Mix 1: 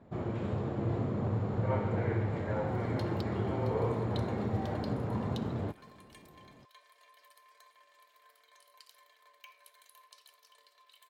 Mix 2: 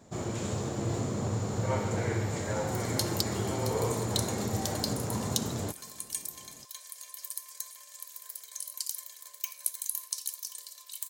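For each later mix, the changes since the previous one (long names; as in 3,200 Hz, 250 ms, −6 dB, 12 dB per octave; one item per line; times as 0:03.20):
master: remove high-frequency loss of the air 480 metres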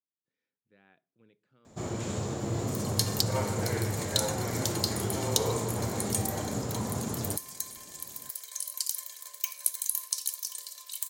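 first sound: entry +1.65 s
second sound +3.5 dB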